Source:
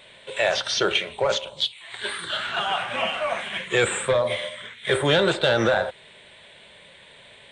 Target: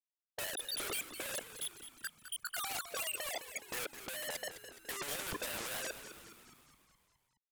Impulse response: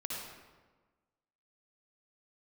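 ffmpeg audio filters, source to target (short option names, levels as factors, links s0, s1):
-filter_complex "[0:a]afftfilt=real='re*gte(hypot(re,im),0.282)':imag='im*gte(hypot(re,im),0.282)':win_size=1024:overlap=0.75,agate=range=0.0224:threshold=0.00794:ratio=3:detection=peak,equalizer=f=3000:t=o:w=1.2:g=7.5,asplit=2[s0][s1];[s1]acompressor=threshold=0.00501:ratio=6,volume=1.19[s2];[s0][s2]amix=inputs=2:normalize=0,asplit=2[s3][s4];[s4]highpass=f=720:p=1,volume=7.94,asoftclip=type=tanh:threshold=0.15[s5];[s3][s5]amix=inputs=2:normalize=0,lowpass=f=1800:p=1,volume=0.501,asoftclip=type=tanh:threshold=0.0178,adynamicsmooth=sensitivity=3.5:basefreq=2400,aeval=exprs='0.0178*sin(PI/2*3.98*val(0)/0.0178)':c=same,asplit=2[s6][s7];[s7]asplit=7[s8][s9][s10][s11][s12][s13][s14];[s8]adelay=209,afreqshift=-93,volume=0.282[s15];[s9]adelay=418,afreqshift=-186,volume=0.164[s16];[s10]adelay=627,afreqshift=-279,volume=0.0944[s17];[s11]adelay=836,afreqshift=-372,volume=0.055[s18];[s12]adelay=1045,afreqshift=-465,volume=0.032[s19];[s13]adelay=1254,afreqshift=-558,volume=0.0184[s20];[s14]adelay=1463,afreqshift=-651,volume=0.0107[s21];[s15][s16][s17][s18][s19][s20][s21]amix=inputs=7:normalize=0[s22];[s6][s22]amix=inputs=2:normalize=0"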